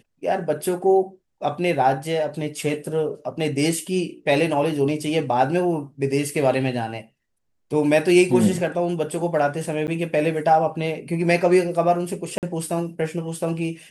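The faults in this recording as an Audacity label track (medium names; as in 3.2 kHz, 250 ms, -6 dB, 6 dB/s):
9.870000	9.880000	dropout 9.4 ms
12.380000	12.430000	dropout 48 ms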